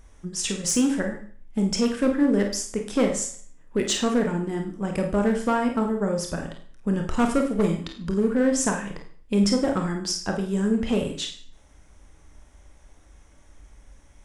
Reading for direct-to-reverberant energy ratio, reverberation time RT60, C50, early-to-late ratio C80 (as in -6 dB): 2.5 dB, 0.50 s, 7.0 dB, 11.5 dB